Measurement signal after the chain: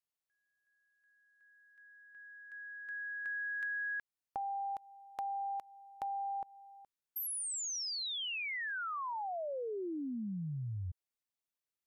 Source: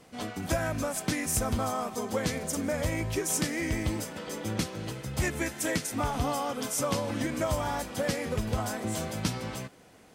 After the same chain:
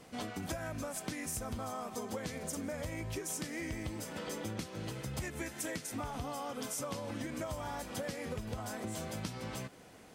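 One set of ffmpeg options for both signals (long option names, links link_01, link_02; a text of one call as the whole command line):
ffmpeg -i in.wav -af "acompressor=threshold=-37dB:ratio=6" out.wav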